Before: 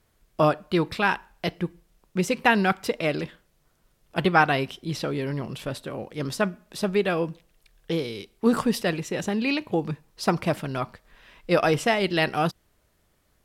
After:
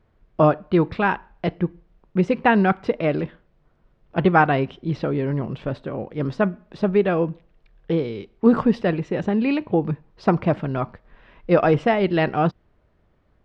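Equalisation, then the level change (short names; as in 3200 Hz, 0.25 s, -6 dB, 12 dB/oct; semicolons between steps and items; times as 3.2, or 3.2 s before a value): tape spacing loss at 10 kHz 39 dB; +6.5 dB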